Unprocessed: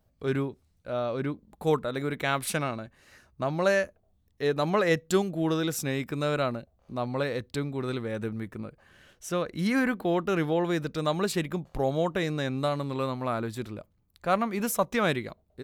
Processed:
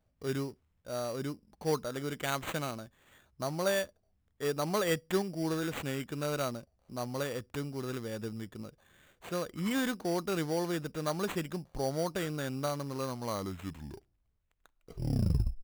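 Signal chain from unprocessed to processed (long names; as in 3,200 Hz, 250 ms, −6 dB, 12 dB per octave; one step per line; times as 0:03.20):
turntable brake at the end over 2.57 s
sample-rate reduction 5,200 Hz, jitter 0%
level −6 dB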